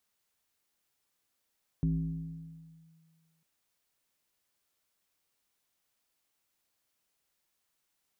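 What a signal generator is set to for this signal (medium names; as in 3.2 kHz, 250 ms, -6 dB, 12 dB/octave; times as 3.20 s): FM tone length 1.60 s, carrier 162 Hz, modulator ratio 0.65, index 0.7, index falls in 1.16 s linear, decay 1.90 s, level -24 dB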